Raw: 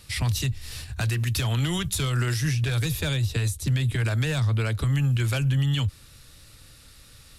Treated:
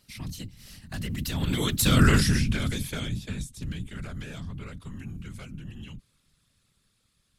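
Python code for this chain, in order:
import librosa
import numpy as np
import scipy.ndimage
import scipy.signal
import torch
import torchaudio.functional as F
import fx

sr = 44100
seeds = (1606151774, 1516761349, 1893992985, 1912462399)

y = fx.doppler_pass(x, sr, speed_mps=24, closest_m=4.6, pass_at_s=2.05)
y = fx.whisperise(y, sr, seeds[0])
y = y * librosa.db_to_amplitude(7.5)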